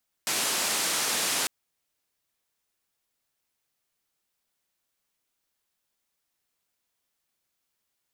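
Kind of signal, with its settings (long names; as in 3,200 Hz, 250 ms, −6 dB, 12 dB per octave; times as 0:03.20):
band-limited noise 200–10,000 Hz, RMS −27.5 dBFS 1.20 s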